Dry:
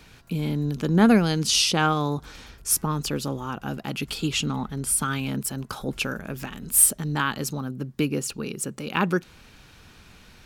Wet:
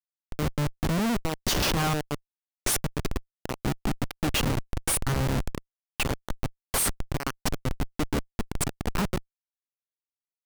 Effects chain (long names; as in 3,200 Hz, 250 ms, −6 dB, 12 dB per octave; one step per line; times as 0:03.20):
dynamic equaliser 240 Hz, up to +5 dB, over −47 dBFS, Q 7.6
transient designer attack +6 dB, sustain −9 dB
gate pattern "xxx.x.x.x" 157 BPM −12 dB
comparator with hysteresis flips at −25.5 dBFS